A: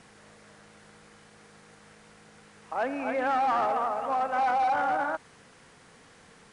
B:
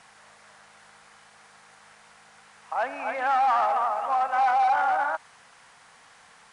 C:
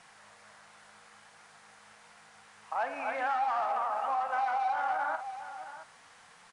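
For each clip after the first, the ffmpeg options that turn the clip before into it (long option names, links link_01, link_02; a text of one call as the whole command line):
ffmpeg -i in.wav -af "lowshelf=frequency=560:width_type=q:width=1.5:gain=-11,volume=2dB" out.wav
ffmpeg -i in.wav -af "aecho=1:1:48|672:0.251|0.15,acompressor=threshold=-24dB:ratio=6,flanger=delay=5.6:depth=5.1:regen=72:speed=1.4:shape=sinusoidal,volume=1dB" out.wav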